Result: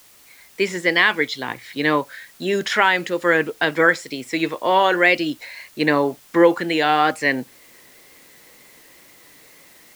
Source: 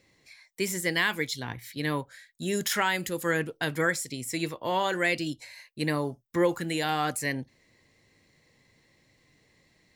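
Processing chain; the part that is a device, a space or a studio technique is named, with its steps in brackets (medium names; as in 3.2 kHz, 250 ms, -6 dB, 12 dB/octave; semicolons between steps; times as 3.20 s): dictaphone (band-pass 290–3400 Hz; level rider gain up to 14 dB; wow and flutter; white noise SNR 29 dB)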